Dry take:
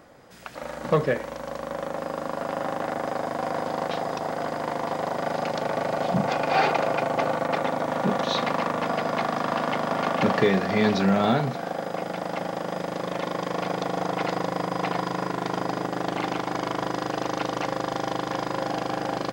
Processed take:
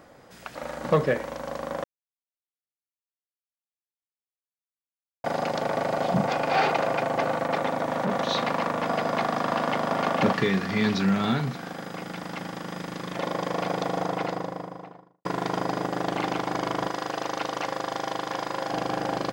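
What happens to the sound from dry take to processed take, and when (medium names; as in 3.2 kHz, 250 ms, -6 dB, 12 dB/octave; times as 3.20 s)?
1.84–5.24 s: mute
6.26–8.89 s: transformer saturation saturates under 920 Hz
10.33–13.17 s: peaking EQ 620 Hz -11.5 dB 1.1 oct
13.85–15.25 s: studio fade out
16.88–18.72 s: bass shelf 360 Hz -9 dB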